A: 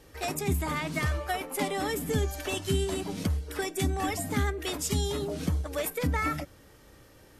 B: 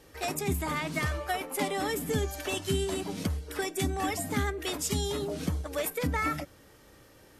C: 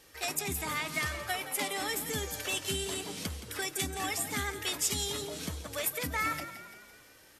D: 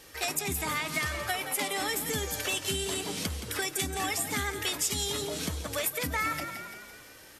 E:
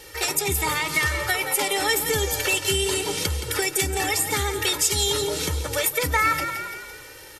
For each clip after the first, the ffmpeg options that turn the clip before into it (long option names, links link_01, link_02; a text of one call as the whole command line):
ffmpeg -i in.wav -af "lowshelf=frequency=110:gain=-5.5" out.wav
ffmpeg -i in.wav -filter_complex "[0:a]tiltshelf=frequency=1100:gain=-6,asplit=7[link_01][link_02][link_03][link_04][link_05][link_06][link_07];[link_02]adelay=170,afreqshift=34,volume=-12dB[link_08];[link_03]adelay=340,afreqshift=68,volume=-17.4dB[link_09];[link_04]adelay=510,afreqshift=102,volume=-22.7dB[link_10];[link_05]adelay=680,afreqshift=136,volume=-28.1dB[link_11];[link_06]adelay=850,afreqshift=170,volume=-33.4dB[link_12];[link_07]adelay=1020,afreqshift=204,volume=-38.8dB[link_13];[link_01][link_08][link_09][link_10][link_11][link_12][link_13]amix=inputs=7:normalize=0,volume=-3dB" out.wav
ffmpeg -i in.wav -af "acompressor=threshold=-37dB:ratio=2,volume=6.5dB" out.wav
ffmpeg -i in.wav -af "aecho=1:1:2.2:0.75,volume=6dB" out.wav